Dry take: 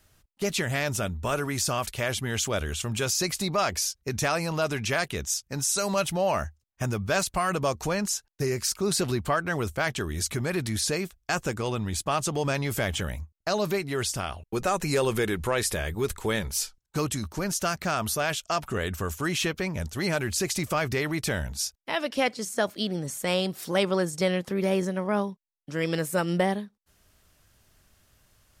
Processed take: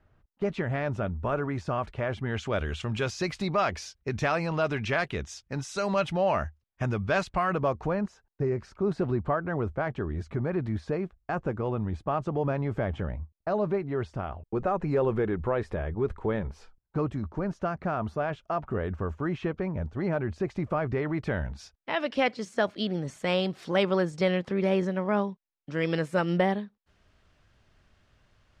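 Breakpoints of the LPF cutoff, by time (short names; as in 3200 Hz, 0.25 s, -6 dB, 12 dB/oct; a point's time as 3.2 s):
2.12 s 1400 Hz
2.67 s 2800 Hz
7.2 s 2800 Hz
8.07 s 1100 Hz
20.79 s 1100 Hz
21.64 s 2000 Hz
22.08 s 3400 Hz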